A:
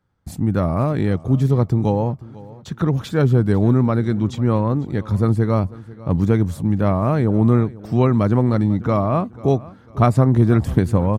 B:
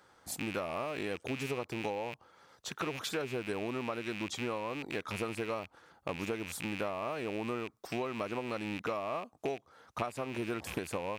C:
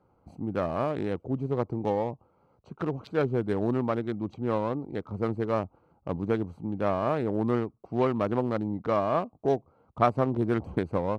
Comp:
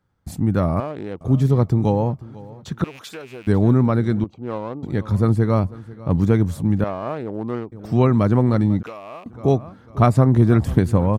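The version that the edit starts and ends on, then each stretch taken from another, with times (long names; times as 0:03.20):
A
0:00.80–0:01.21: punch in from C
0:02.84–0:03.47: punch in from B
0:04.24–0:04.83: punch in from C
0:06.84–0:07.72: punch in from C
0:08.83–0:09.26: punch in from B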